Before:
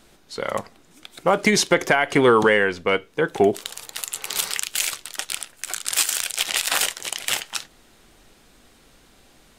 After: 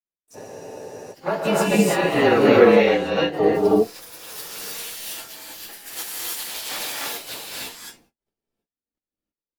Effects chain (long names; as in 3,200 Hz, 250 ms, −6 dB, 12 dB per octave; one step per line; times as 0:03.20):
partials spread apart or drawn together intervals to 111%
noise gate −51 dBFS, range −54 dB
parametric band 330 Hz +7.5 dB 2.9 octaves
pitch-shifted copies added +7 semitones −11 dB
reverb whose tail is shaped and stops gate 350 ms rising, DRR −5 dB
frozen spectrum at 0:00.37, 0.76 s
level −8 dB